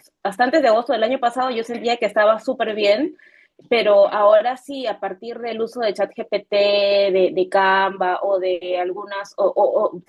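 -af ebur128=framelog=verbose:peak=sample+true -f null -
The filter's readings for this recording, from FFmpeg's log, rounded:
Integrated loudness:
  I:         -18.8 LUFS
  Threshold: -29.0 LUFS
Loudness range:
  LRA:         1.8 LU
  Threshold: -38.9 LUFS
  LRA low:   -19.7 LUFS
  LRA high:  -18.0 LUFS
Sample peak:
  Peak:       -3.7 dBFS
True peak:
  Peak:       -3.7 dBFS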